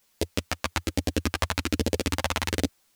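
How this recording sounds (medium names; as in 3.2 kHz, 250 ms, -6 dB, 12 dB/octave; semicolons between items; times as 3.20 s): phasing stages 2, 1.2 Hz, lowest notch 350–1200 Hz; a quantiser's noise floor 12-bit, dither triangular; a shimmering, thickened sound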